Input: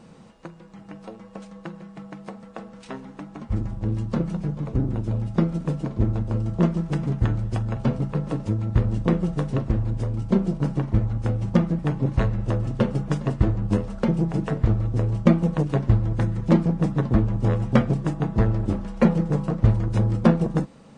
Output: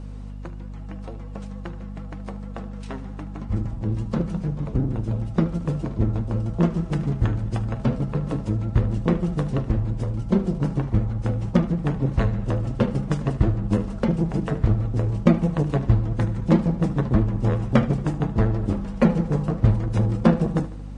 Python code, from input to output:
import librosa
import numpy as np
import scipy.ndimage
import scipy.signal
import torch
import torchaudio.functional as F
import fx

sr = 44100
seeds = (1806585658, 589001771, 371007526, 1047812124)

y = fx.echo_feedback(x, sr, ms=75, feedback_pct=56, wet_db=-16)
y = fx.vibrato(y, sr, rate_hz=11.0, depth_cents=51.0)
y = fx.add_hum(y, sr, base_hz=50, snr_db=12)